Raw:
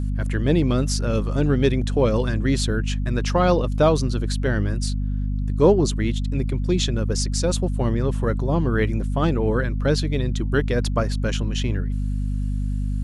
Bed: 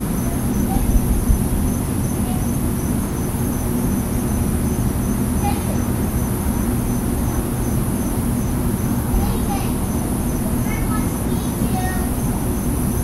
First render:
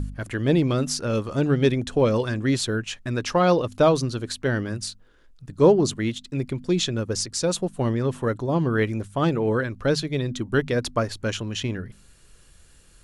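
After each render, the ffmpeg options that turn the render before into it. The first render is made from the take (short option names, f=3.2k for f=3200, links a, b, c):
-af "bandreject=f=50:t=h:w=4,bandreject=f=100:t=h:w=4,bandreject=f=150:t=h:w=4,bandreject=f=200:t=h:w=4,bandreject=f=250:t=h:w=4"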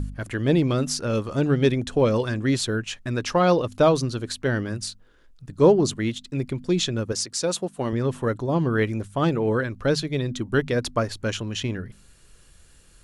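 -filter_complex "[0:a]asettb=1/sr,asplit=3[a][b][c];[a]atrim=end=7.124[d];[b]atrim=start=7.12:end=7.93,asetpts=PTS-STARTPTS,afade=t=in:d=0.004:c=qsin,afade=t=out:st=0.806:d=0.004:c=qsin,highpass=f=250:p=1[e];[c]atrim=start=7.926[f];[d][e]acrossfade=d=0.004:c1=hsin:c2=qsin[g];[g][f]acrossfade=d=0.004:c1=qsin:c2=hsin"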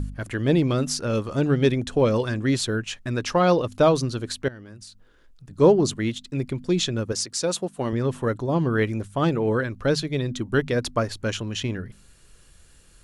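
-filter_complex "[0:a]asettb=1/sr,asplit=3[a][b][c];[a]atrim=end=4.484[d];[b]atrim=start=4.48:end=5.51,asetpts=PTS-STARTPTS,afade=t=in:d=0.004:c=qsin,afade=t=out:st=1.026:d=0.004:c=qsin,acompressor=threshold=-42dB:ratio=4:attack=3.2:release=140:knee=1:detection=peak[e];[c]atrim=start=5.506[f];[d][e]acrossfade=d=0.004:c1=hsin:c2=qsin[g];[g][f]acrossfade=d=0.004:c1=qsin:c2=hsin"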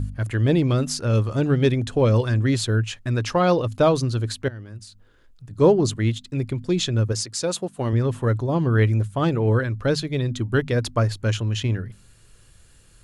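-af "equalizer=f=110:w=4.7:g=11,bandreject=f=5.7k:w=25"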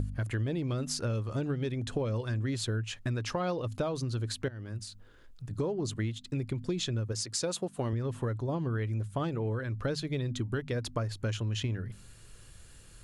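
-af "alimiter=limit=-13dB:level=0:latency=1:release=399,acompressor=threshold=-30dB:ratio=5"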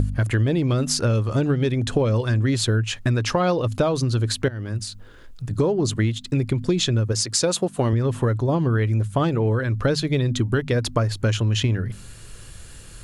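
-af "volume=11.5dB"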